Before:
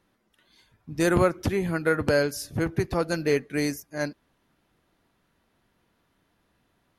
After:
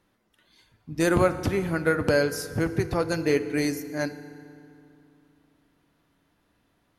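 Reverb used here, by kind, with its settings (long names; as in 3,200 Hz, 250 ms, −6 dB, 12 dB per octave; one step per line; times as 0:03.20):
feedback delay network reverb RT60 2.7 s, low-frequency decay 1.25×, high-frequency decay 0.65×, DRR 11.5 dB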